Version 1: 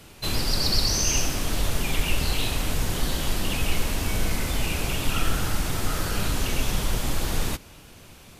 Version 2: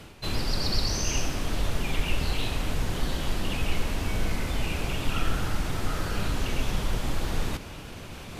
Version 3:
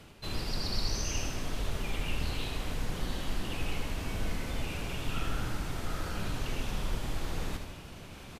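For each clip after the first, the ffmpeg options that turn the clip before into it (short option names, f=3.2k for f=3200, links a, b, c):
-af "highshelf=f=5.9k:g=-11,areverse,acompressor=mode=upward:threshold=-27dB:ratio=2.5,areverse,volume=-2dB"
-af "aecho=1:1:76|152|228|304|380|456:0.447|0.228|0.116|0.0593|0.0302|0.0154,volume=-7dB"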